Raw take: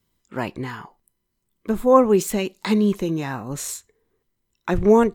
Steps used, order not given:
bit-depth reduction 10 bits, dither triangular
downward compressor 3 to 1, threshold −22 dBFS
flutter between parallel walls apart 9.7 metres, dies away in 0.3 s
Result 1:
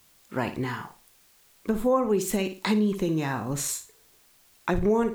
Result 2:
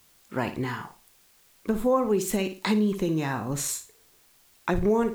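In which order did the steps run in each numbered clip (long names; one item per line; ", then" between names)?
bit-depth reduction, then flutter between parallel walls, then downward compressor
flutter between parallel walls, then downward compressor, then bit-depth reduction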